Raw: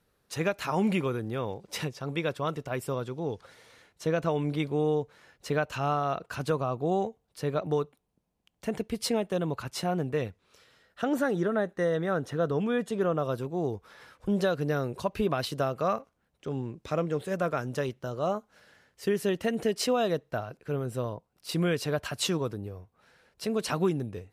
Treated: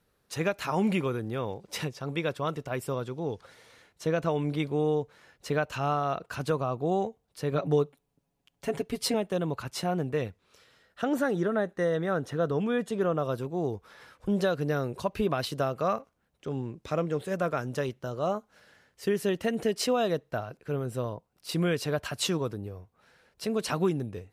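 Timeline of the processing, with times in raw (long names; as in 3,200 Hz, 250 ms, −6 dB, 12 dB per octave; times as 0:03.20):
0:07.51–0:09.14: comb filter 7.2 ms, depth 75%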